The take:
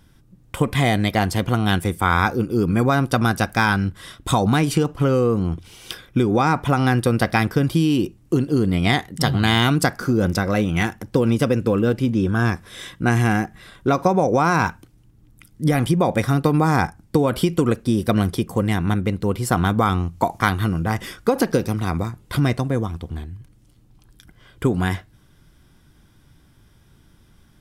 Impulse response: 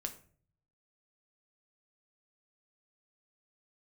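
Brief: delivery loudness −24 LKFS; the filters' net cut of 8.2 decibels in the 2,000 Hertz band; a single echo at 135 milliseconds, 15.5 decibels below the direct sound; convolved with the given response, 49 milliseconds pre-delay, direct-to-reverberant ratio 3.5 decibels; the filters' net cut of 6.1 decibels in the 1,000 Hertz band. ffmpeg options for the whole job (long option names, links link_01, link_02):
-filter_complex "[0:a]equalizer=frequency=1000:width_type=o:gain=-6.5,equalizer=frequency=2000:width_type=o:gain=-8.5,aecho=1:1:135:0.168,asplit=2[link_01][link_02];[1:a]atrim=start_sample=2205,adelay=49[link_03];[link_02][link_03]afir=irnorm=-1:irlink=0,volume=-2.5dB[link_04];[link_01][link_04]amix=inputs=2:normalize=0,volume=-4dB"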